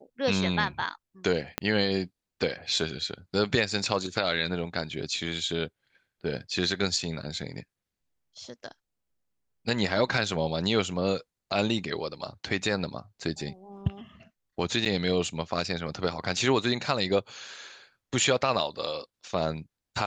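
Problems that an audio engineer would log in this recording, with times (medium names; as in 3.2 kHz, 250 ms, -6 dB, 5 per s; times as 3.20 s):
1.58 s: pop -11 dBFS
14.85–14.86 s: dropout 6.7 ms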